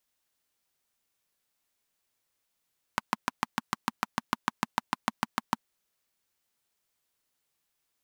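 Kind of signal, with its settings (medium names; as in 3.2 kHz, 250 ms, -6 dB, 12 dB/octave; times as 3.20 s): single-cylinder engine model, steady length 2.60 s, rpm 800, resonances 230/970 Hz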